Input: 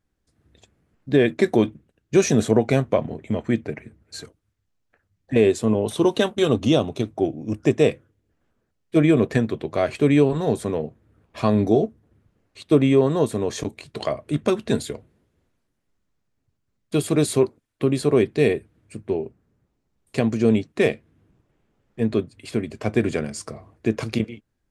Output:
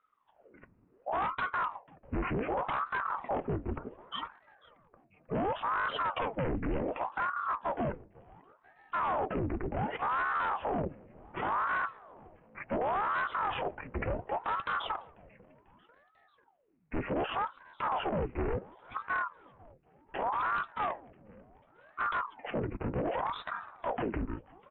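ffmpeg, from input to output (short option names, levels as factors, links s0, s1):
-filter_complex "[0:a]alimiter=limit=0.2:level=0:latency=1:release=134,aresample=11025,asoftclip=type=hard:threshold=0.0316,aresample=44100,asetrate=22050,aresample=44100,atempo=2,asplit=4[s0][s1][s2][s3];[s1]adelay=493,afreqshift=130,volume=0.0631[s4];[s2]adelay=986,afreqshift=260,volume=0.0339[s5];[s3]adelay=1479,afreqshift=390,volume=0.0184[s6];[s0][s4][s5][s6]amix=inputs=4:normalize=0,aeval=exprs='val(0)*sin(2*PI*720*n/s+720*0.8/0.68*sin(2*PI*0.68*n/s))':c=same,volume=1.5"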